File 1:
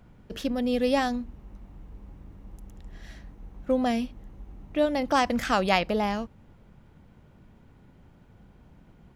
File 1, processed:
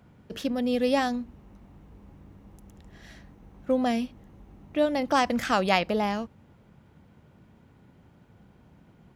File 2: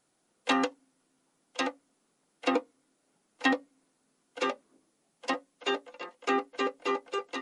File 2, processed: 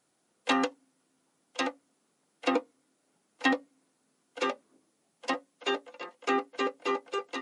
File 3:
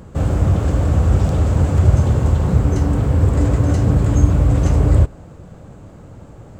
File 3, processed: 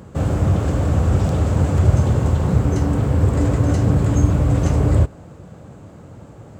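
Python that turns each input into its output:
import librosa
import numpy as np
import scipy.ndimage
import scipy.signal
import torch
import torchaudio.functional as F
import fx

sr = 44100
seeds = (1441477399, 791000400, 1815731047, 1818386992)

y = scipy.signal.sosfilt(scipy.signal.butter(2, 76.0, 'highpass', fs=sr, output='sos'), x)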